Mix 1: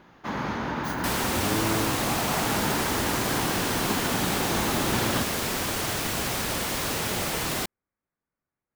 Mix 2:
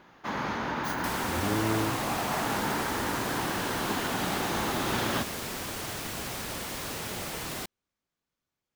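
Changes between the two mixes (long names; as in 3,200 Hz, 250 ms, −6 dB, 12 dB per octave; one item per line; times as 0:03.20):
speech: remove Butterworth low-pass 2,200 Hz
first sound: add low-shelf EQ 330 Hz −6 dB
second sound −7.5 dB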